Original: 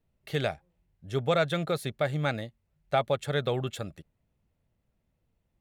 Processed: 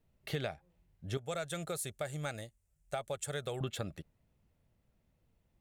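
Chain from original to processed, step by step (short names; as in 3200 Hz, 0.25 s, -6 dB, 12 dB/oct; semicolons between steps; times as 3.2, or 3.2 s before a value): 1.17–3.61 graphic EQ 125/250/500/1000/2000/4000/8000 Hz -8/-12/-5/-8/-6/-9/+11 dB; compressor 6:1, threshold -35 dBFS, peak gain reduction 11 dB; gain +1.5 dB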